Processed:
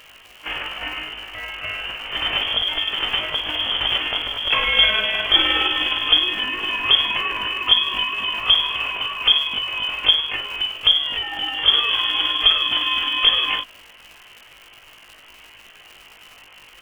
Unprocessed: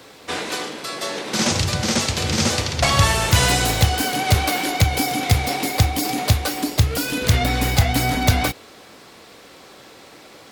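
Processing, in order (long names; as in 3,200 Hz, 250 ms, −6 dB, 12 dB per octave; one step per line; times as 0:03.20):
voice inversion scrambler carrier 3,300 Hz
parametric band 180 Hz −8.5 dB 1.1 octaves
surface crackle 230 per second −33 dBFS
time stretch by overlap-add 1.6×, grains 103 ms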